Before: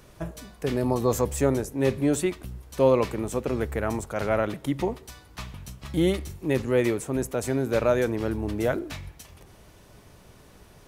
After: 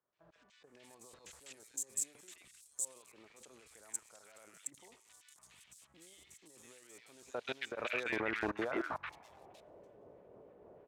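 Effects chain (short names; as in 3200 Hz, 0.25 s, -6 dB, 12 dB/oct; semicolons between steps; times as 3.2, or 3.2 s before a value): median filter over 9 samples; negative-ratio compressor -25 dBFS, ratio -0.5; band-pass sweep 8000 Hz -> 510 Hz, 6.46–9.86; level quantiser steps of 24 dB; tremolo triangle 3.2 Hz, depth 40%; three bands offset in time lows, mids, highs 0.13/0.64 s, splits 1400/4400 Hz; gain +15.5 dB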